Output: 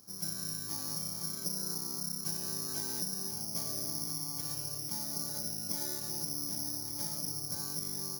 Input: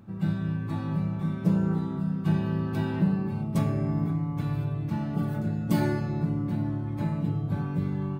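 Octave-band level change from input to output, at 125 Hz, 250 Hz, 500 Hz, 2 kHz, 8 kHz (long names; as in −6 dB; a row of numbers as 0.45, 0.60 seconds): −21.0 dB, −19.0 dB, −13.5 dB, −12.0 dB, can't be measured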